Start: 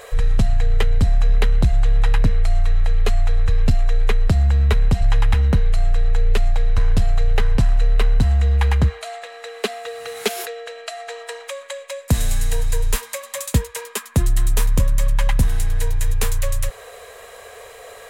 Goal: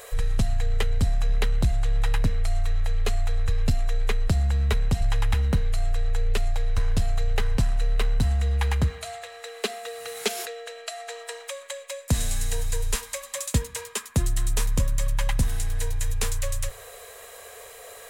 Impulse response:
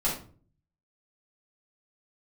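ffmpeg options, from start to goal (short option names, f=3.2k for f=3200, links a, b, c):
-filter_complex "[0:a]crystalizer=i=1.5:c=0,acrossover=split=8800[a][b];[b]acompressor=threshold=-36dB:ratio=4:attack=1:release=60[c];[a][c]amix=inputs=2:normalize=0,asplit=2[d][e];[1:a]atrim=start_sample=2205[f];[e][f]afir=irnorm=-1:irlink=0,volume=-31dB[g];[d][g]amix=inputs=2:normalize=0,volume=-6dB"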